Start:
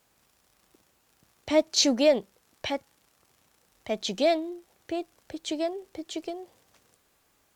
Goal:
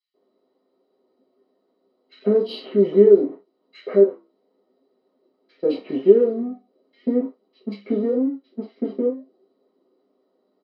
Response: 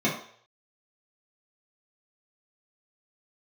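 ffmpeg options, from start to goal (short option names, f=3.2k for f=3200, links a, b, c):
-filter_complex "[0:a]aeval=exprs='val(0)+0.5*0.0178*sgn(val(0))':c=same,agate=range=-37dB:threshold=-31dB:ratio=16:detection=peak,highpass=120,highshelf=f=6k:g=5.5,acompressor=threshold=-38dB:ratio=2,aresample=16000,volume=24dB,asoftclip=hard,volume=-24dB,aresample=44100,flanger=delay=5.1:depth=5.5:regen=74:speed=1.2:shape=sinusoidal,asetrate=31311,aresample=44100,asplit=2[a][b];[b]adynamicsmooth=sensitivity=2.5:basefreq=3.1k,volume=3dB[c];[a][c]amix=inputs=2:normalize=0,equalizer=f=250:t=o:w=1:g=6,equalizer=f=500:t=o:w=1:g=8,equalizer=f=2k:t=o:w=1:g=-4,acrossover=split=2300[d][e];[d]adelay=140[f];[f][e]amix=inputs=2:normalize=0[g];[1:a]atrim=start_sample=2205,afade=t=out:st=0.23:d=0.01,atrim=end_sample=10584,asetrate=79380,aresample=44100[h];[g][h]afir=irnorm=-1:irlink=0,volume=-7.5dB"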